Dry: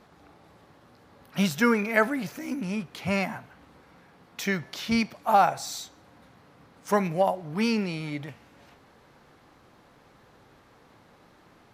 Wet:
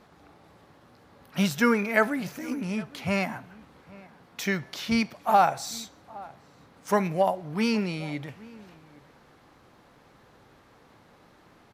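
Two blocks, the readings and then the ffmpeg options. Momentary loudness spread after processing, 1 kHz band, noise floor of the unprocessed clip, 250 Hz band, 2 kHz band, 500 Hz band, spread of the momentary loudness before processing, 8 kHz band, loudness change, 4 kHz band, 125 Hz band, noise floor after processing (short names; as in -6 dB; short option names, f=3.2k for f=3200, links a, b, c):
21 LU, 0.0 dB, -58 dBFS, 0.0 dB, 0.0 dB, 0.0 dB, 16 LU, 0.0 dB, 0.0 dB, 0.0 dB, 0.0 dB, -58 dBFS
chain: -filter_complex "[0:a]asplit=2[a][b];[b]adelay=816.3,volume=-21dB,highshelf=f=4k:g=-18.4[c];[a][c]amix=inputs=2:normalize=0"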